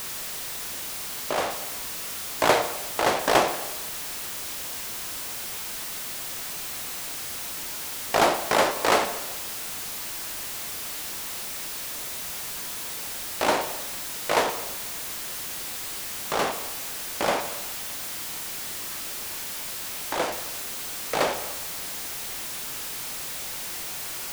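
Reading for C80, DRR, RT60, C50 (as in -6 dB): 12.0 dB, 7.5 dB, 1.1 s, 10.0 dB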